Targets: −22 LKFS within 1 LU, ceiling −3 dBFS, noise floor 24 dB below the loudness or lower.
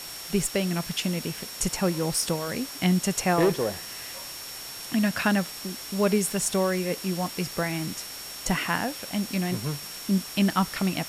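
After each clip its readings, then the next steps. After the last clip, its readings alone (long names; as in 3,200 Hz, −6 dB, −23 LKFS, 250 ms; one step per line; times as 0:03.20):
interfering tone 5,500 Hz; level of the tone −41 dBFS; background noise floor −39 dBFS; target noise floor −51 dBFS; integrated loudness −27.0 LKFS; sample peak −9.5 dBFS; target loudness −22.0 LKFS
→ notch filter 5,500 Hz, Q 30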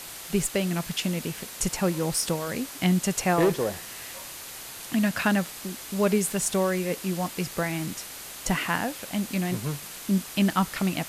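interfering tone none found; background noise floor −41 dBFS; target noise floor −51 dBFS
→ broadband denoise 10 dB, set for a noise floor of −41 dBFS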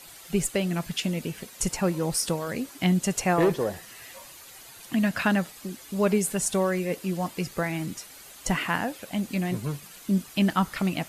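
background noise floor −47 dBFS; target noise floor −51 dBFS
→ broadband denoise 6 dB, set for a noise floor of −47 dBFS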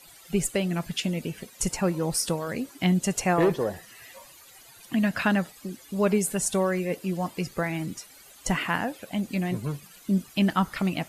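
background noise floor −51 dBFS; target noise floor −52 dBFS
→ broadband denoise 6 dB, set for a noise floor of −51 dBFS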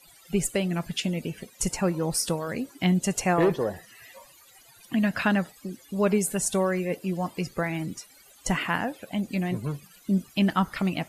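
background noise floor −55 dBFS; integrated loudness −27.5 LKFS; sample peak −9.5 dBFS; target loudness −22.0 LKFS
→ level +5.5 dB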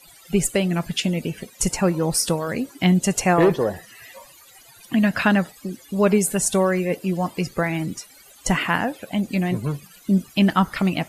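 integrated loudness −22.0 LKFS; sample peak −4.0 dBFS; background noise floor −49 dBFS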